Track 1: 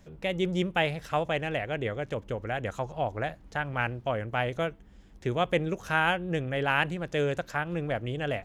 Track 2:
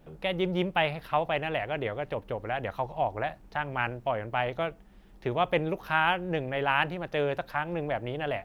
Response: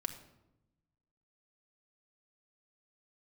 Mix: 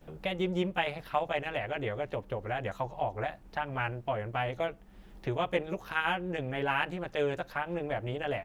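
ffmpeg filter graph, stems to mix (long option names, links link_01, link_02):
-filter_complex "[0:a]volume=-8.5dB[link_01];[1:a]acompressor=threshold=-47dB:ratio=1.5,volume=-1,adelay=13,volume=3dB,asplit=2[link_02][link_03];[link_03]apad=whole_len=372630[link_04];[link_01][link_04]sidechaingate=range=-33dB:threshold=-41dB:ratio=16:detection=peak[link_05];[link_05][link_02]amix=inputs=2:normalize=0"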